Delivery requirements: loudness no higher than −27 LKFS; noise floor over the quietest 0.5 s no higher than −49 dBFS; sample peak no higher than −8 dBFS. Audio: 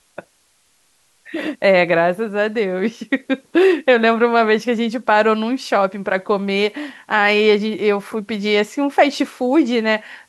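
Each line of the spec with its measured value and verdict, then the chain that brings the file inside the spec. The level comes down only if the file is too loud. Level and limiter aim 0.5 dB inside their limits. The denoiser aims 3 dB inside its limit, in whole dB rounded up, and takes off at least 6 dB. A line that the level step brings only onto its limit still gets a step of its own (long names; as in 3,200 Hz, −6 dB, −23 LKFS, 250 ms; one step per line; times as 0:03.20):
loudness −17.0 LKFS: out of spec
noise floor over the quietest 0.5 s −60 dBFS: in spec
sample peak −2.5 dBFS: out of spec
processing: level −10.5 dB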